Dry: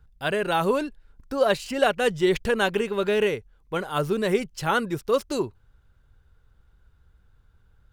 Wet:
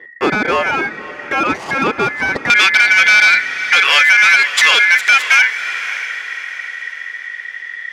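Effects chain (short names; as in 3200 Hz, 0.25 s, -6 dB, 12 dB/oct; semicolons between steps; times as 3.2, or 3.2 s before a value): compressor 6:1, threshold -29 dBFS, peak gain reduction 14 dB; ring modulator 1900 Hz; hard clip -33.5 dBFS, distortion -9 dB; band-pass 330 Hz, Q 0.81, from 2.5 s 2500 Hz; diffused feedback echo 0.578 s, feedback 46%, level -15 dB; maximiser +33.5 dB; gain -1 dB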